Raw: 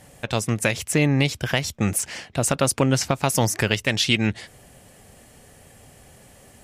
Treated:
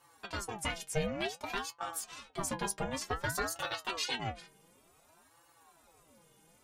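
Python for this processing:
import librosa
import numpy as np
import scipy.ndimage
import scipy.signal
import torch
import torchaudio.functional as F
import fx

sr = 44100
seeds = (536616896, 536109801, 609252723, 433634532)

y = fx.stiff_resonator(x, sr, f0_hz=160.0, decay_s=0.25, stiffness=0.008)
y = fx.ring_lfo(y, sr, carrier_hz=660.0, swing_pct=55, hz=0.55)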